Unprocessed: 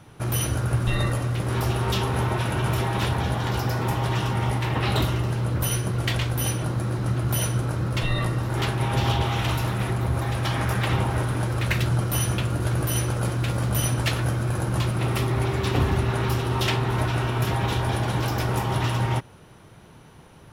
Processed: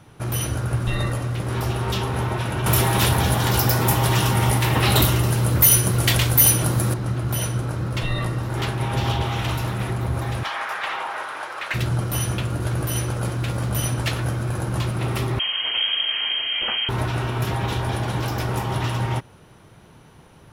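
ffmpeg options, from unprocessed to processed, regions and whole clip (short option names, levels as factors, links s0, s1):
-filter_complex "[0:a]asettb=1/sr,asplit=3[s0][s1][s2];[s0]atrim=end=2.664[s3];[s1]atrim=start=2.66:end=6.94,asetpts=PTS-STARTPTS,afade=t=in:d=0.004:c=qsin,afade=t=out:st=4.276:d=0.004:c=qsin,aemphasis=mode=production:type=50fm,asoftclip=type=hard:threshold=0.2,acontrast=34[s4];[s2]atrim=start=6.936[s5];[s3][s4]acrossfade=d=0.004:c1=hsin:c2=qsin[s6];[s6][s5]acrossfade=d=0.004:c1=qsin:c2=hsin,asettb=1/sr,asplit=3[s7][s8][s9];[s7]atrim=end=10.434[s10];[s8]atrim=start=10.43:end=11.74,asetpts=PTS-STARTPTS,afade=t=in:d=0.004:c=qsin,afade=t=out:st=1.306:d=0.004:c=qsin,highpass=890,asplit=2[s11][s12];[s12]highpass=f=720:p=1,volume=5.01,asoftclip=type=tanh:threshold=0.299[s13];[s11][s13]amix=inputs=2:normalize=0,lowpass=f=1400:p=1,volume=0.501[s14];[s9]atrim=start=11.736[s15];[s10][s14]acrossfade=d=0.004:c1=hsin:c2=qsin[s16];[s16][s15]acrossfade=d=0.004:c1=qsin:c2=hsin,asettb=1/sr,asplit=3[s17][s18][s19];[s17]atrim=end=15.394[s20];[s18]atrim=start=15.39:end=16.89,asetpts=PTS-STARTPTS,afade=t=in:d=0.004:c=qsin,afade=t=out:st=1.496:d=0.004:c=qsin,aeval=exprs='clip(val(0),-1,0.0841)':c=same,lowpass=f=2800:t=q:w=0.5098,lowpass=f=2800:t=q:w=0.6013,lowpass=f=2800:t=q:w=0.9,lowpass=f=2800:t=q:w=2.563,afreqshift=-3300[s21];[s19]atrim=start=16.886[s22];[s20][s21]acrossfade=d=0.004:c1=hsin:c2=qsin[s23];[s23][s22]acrossfade=d=0.004:c1=qsin:c2=hsin"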